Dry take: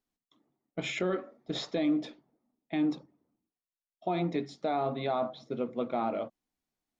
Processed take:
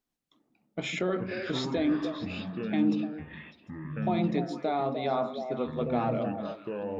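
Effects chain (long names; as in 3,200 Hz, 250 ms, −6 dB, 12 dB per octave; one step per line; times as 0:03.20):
delay with pitch and tempo change per echo 104 ms, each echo −6 semitones, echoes 2, each echo −6 dB
echo through a band-pass that steps 150 ms, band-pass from 200 Hz, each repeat 1.4 octaves, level −2 dB
level +1 dB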